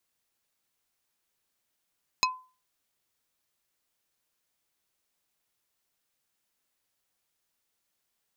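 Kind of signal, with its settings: wood hit plate, lowest mode 1020 Hz, decay 0.35 s, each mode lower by 0 dB, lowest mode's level -20.5 dB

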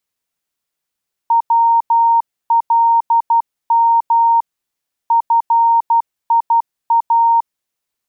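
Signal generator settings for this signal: Morse "WLM FIA" 12 wpm 925 Hz -8.5 dBFS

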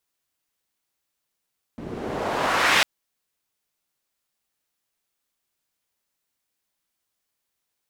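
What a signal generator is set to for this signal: swept filtered noise pink, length 1.05 s bandpass, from 210 Hz, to 2400 Hz, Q 1.1, exponential, gain ramp +18.5 dB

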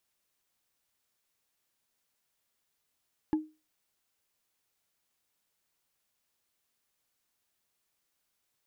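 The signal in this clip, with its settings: wood hit, lowest mode 310 Hz, decay 0.28 s, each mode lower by 11 dB, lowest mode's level -21 dB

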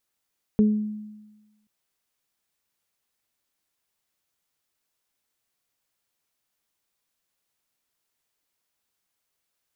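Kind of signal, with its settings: additive tone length 1.08 s, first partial 212 Hz, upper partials -9 dB, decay 1.18 s, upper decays 0.40 s, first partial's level -13.5 dB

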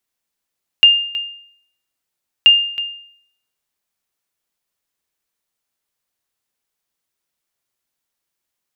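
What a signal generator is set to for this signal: sonar ping 2810 Hz, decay 0.64 s, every 1.63 s, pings 2, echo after 0.32 s, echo -15 dB -2 dBFS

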